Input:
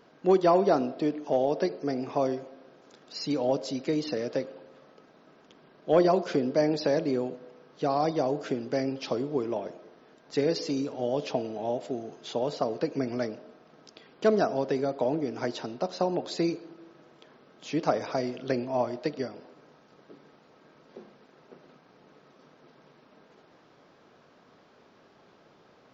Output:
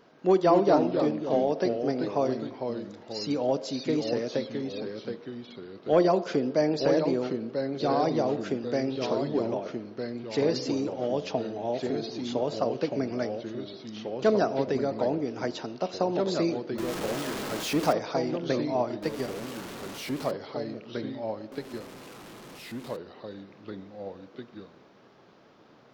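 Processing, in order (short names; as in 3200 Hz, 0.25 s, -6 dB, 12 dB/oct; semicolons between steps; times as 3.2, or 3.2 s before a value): 16.78–17.93 zero-crossing step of -29 dBFS; echoes that change speed 0.188 s, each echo -2 st, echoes 2, each echo -6 dB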